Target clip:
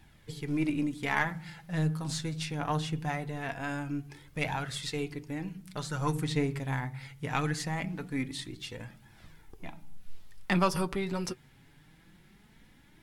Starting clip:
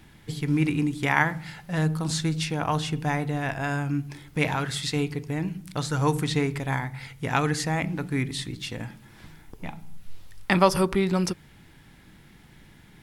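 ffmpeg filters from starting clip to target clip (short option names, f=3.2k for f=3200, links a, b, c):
-af "aeval=exprs='0.596*(cos(1*acos(clip(val(0)/0.596,-1,1)))-cos(1*PI/2))+0.0299*(cos(6*acos(clip(val(0)/0.596,-1,1)))-cos(6*PI/2))':c=same,flanger=delay=1.1:depth=7:regen=42:speed=0.22:shape=triangular,volume=-3dB"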